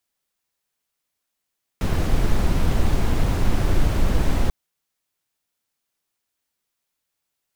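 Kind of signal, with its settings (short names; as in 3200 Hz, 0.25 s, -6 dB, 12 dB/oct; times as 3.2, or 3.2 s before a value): noise brown, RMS -17 dBFS 2.69 s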